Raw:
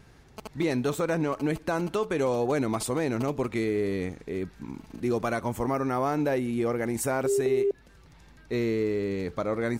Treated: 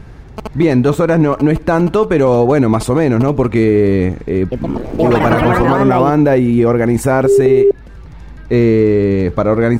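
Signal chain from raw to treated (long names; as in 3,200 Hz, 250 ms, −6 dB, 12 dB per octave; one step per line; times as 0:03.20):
low-shelf EQ 110 Hz +9 dB
0:04.40–0:06.51: delay with pitch and tempo change per echo 119 ms, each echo +5 semitones, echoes 3
high-shelf EQ 3,100 Hz −11.5 dB
boost into a limiter +16.5 dB
level −1 dB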